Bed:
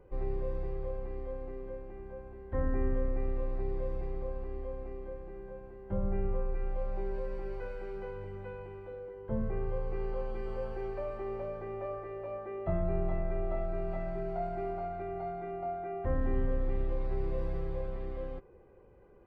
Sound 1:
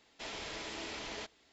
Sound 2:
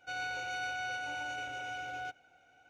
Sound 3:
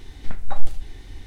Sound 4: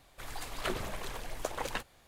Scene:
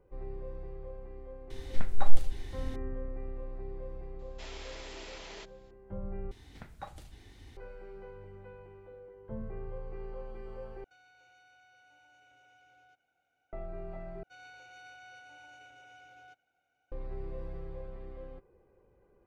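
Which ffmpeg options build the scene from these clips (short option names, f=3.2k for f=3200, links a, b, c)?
-filter_complex "[3:a]asplit=2[a][b];[2:a]asplit=2[c][d];[0:a]volume=-7dB[e];[1:a]highpass=280[f];[b]highpass=54[g];[c]acompressor=threshold=-45dB:ratio=6:attack=3.2:release=140:knee=1:detection=peak[h];[e]asplit=4[i][j][k][l];[i]atrim=end=6.314[m];[g]atrim=end=1.26,asetpts=PTS-STARTPTS,volume=-9.5dB[n];[j]atrim=start=7.566:end=10.844[o];[h]atrim=end=2.69,asetpts=PTS-STARTPTS,volume=-15dB[p];[k]atrim=start=13.526:end=14.234[q];[d]atrim=end=2.69,asetpts=PTS-STARTPTS,volume=-15dB[r];[l]atrim=start=16.916[s];[a]atrim=end=1.26,asetpts=PTS-STARTPTS,volume=-2.5dB,afade=t=in:d=0.004:c=hsin,afade=t=out:st=1.256:d=0.004:c=hsin,adelay=1500[t];[f]atrim=end=1.52,asetpts=PTS-STARTPTS,volume=-4.5dB,afade=t=in:d=0.004:c=hsin,afade=t=out:st=1.516:d=0.004:c=hsin,adelay=4190[u];[m][n]acrossfade=d=0.004:c1=hsin:c2=hsin[v];[v][o]acrossfade=d=0.004:c1=hsin:c2=hsin[w];[w][p]acrossfade=d=0.004:c1=hsin:c2=hsin[x];[x][q]acrossfade=d=0.004:c1=hsin:c2=hsin[y];[y][r]acrossfade=d=0.004:c1=hsin:c2=hsin[z];[z][s]acrossfade=d=0.004:c1=hsin:c2=hsin[aa];[aa][t][u]amix=inputs=3:normalize=0"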